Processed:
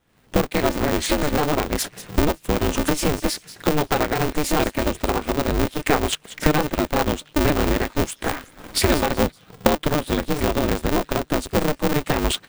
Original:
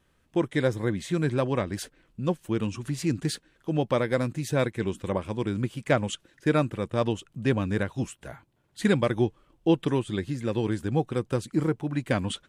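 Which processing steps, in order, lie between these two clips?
pitch shift switched off and on +2 st, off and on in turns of 153 ms; recorder AGC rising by 58 dB/s; waveshaping leveller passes 1; on a send: feedback echo behind a high-pass 188 ms, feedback 33%, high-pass 2.9 kHz, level -13 dB; on the sum: polarity switched at an audio rate 150 Hz

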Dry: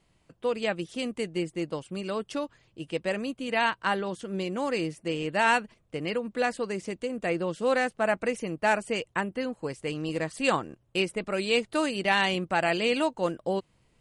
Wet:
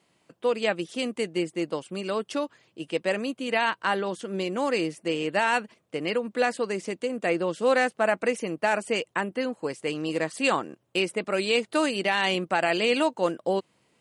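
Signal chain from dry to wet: high-pass 210 Hz 12 dB/octave; peak limiter -16 dBFS, peak gain reduction 6 dB; trim +3.5 dB

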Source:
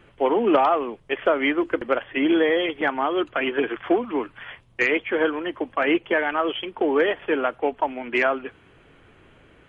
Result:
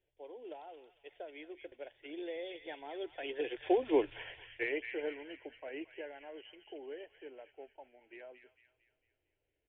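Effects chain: Doppler pass-by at 4.05 s, 18 m/s, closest 2.7 m; on a send: feedback echo behind a high-pass 226 ms, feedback 45%, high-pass 2 kHz, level -4.5 dB; on the sum: resampled via 8 kHz; static phaser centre 500 Hz, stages 4; trim +1 dB

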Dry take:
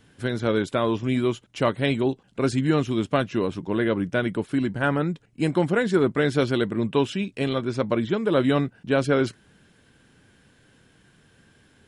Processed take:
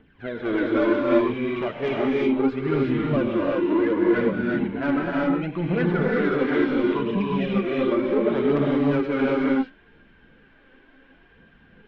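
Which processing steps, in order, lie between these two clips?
phaser 0.7 Hz, delay 4 ms, feedback 71%; low-pass 2.8 kHz 24 dB/octave; peaking EQ 110 Hz -14 dB 0.74 oct; in parallel at +2.5 dB: peak limiter -13.5 dBFS, peak gain reduction 11 dB; on the sum: harmonic-percussive split percussive -7 dB; saturation -10 dBFS, distortion -16 dB; gated-style reverb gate 400 ms rising, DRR -3.5 dB; trim -7.5 dB

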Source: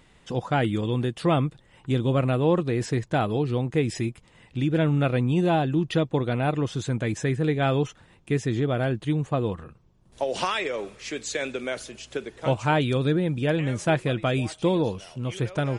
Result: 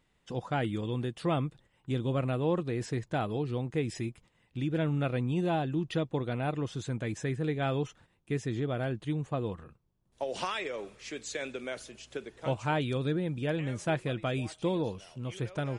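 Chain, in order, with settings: gate -48 dBFS, range -8 dB; trim -7.5 dB

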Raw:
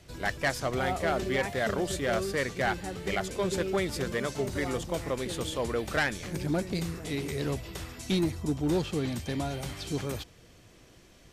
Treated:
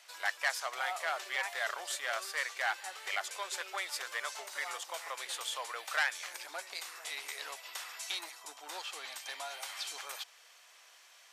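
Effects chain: in parallel at +0.5 dB: compression, threshold -36 dBFS, peak gain reduction 12 dB; on the sum: high-pass 820 Hz 24 dB/octave; trim -4 dB

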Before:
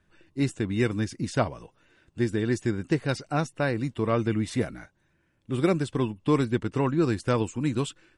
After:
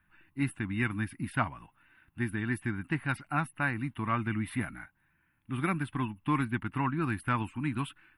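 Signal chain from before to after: FFT filter 290 Hz 0 dB, 470 Hz -19 dB, 840 Hz +4 dB, 1.5 kHz +7 dB, 2.6 kHz +5 dB, 6.8 kHz -25 dB, 11 kHz +13 dB; trim -5 dB

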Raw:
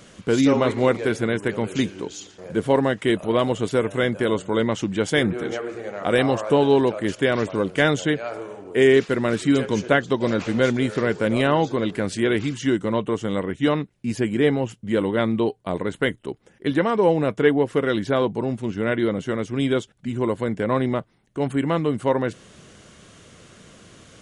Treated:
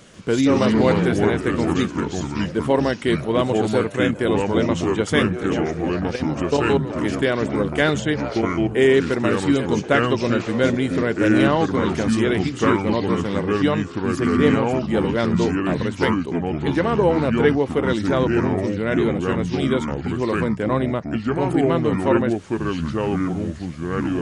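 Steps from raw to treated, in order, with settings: 5.99–6.90 s: level held to a coarse grid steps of 16 dB; ever faster or slower copies 140 ms, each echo -4 st, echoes 2

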